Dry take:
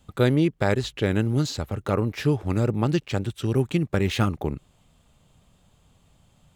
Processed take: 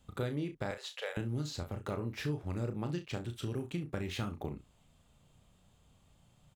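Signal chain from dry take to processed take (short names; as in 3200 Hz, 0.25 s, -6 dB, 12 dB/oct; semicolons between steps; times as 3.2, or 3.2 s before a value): 0.71–1.17 elliptic high-pass 500 Hz, stop band 40 dB; compressor 3:1, threshold -29 dBFS, peak gain reduction 10.5 dB; on a send: early reflections 34 ms -7.5 dB, 67 ms -16.5 dB; on the sum: gain -7 dB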